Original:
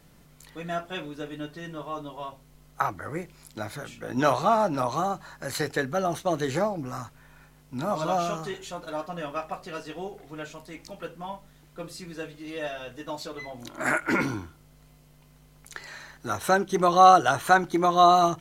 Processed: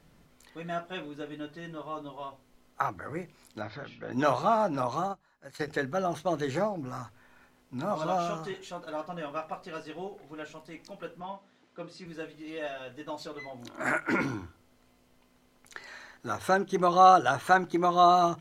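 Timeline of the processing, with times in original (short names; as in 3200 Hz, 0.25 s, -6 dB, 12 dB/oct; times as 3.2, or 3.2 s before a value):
3.61–4.12 steep low-pass 5300 Hz 48 dB/oct
4.99–5.68 upward expander 2.5:1, over -37 dBFS
11.2–12.06 BPF 140–5900 Hz
whole clip: high shelf 6800 Hz -9 dB; notches 50/100/150 Hz; gain -3 dB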